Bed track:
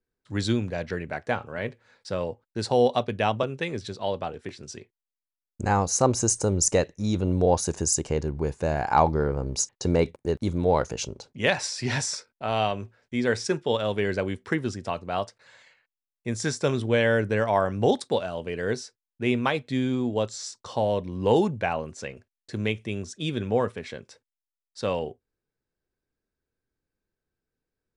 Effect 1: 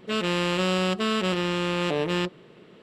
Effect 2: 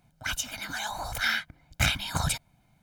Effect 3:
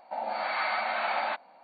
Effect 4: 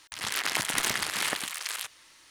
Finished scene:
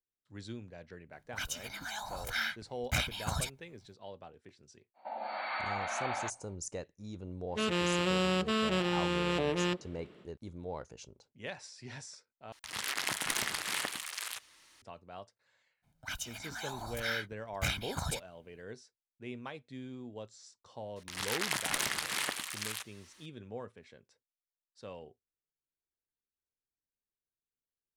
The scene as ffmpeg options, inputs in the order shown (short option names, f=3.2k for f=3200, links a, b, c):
-filter_complex "[2:a]asplit=2[a][b];[4:a]asplit=2[c][d];[0:a]volume=-19dB,asplit=2[e][f];[e]atrim=end=12.524[g];[c]atrim=end=2.3,asetpts=PTS-STARTPTS,volume=-5.5dB[h];[f]atrim=start=14.816[i];[a]atrim=end=2.82,asetpts=PTS-STARTPTS,volume=-7dB,afade=t=in:d=0.004:c=hsin,afade=t=out:st=2.816:d=0.004:c=hsin,adelay=1120[j];[3:a]atrim=end=1.63,asetpts=PTS-STARTPTS,volume=-7dB,afade=t=in:d=0.05,afade=t=out:st=1.58:d=0.05,adelay=4940[k];[1:a]atrim=end=2.82,asetpts=PTS-STARTPTS,volume=-5.5dB,afade=t=in:d=0.1,afade=t=out:st=2.72:d=0.1,adelay=7480[l];[b]atrim=end=2.82,asetpts=PTS-STARTPTS,volume=-8.5dB,afade=t=in:d=0.02,afade=t=out:st=2.8:d=0.02,adelay=15820[m];[d]atrim=end=2.3,asetpts=PTS-STARTPTS,volume=-5dB,afade=t=in:d=0.004:c=hsin,afade=t=out:st=2.296:d=0.004:c=hsin,adelay=20960[n];[g][h]acrossfade=d=0.004:c1=hsin:c2=hsin[o];[o][i]acrossfade=d=0.004:c1=hsin:c2=hsin[p];[p][j][k][l][m][n]amix=inputs=6:normalize=0"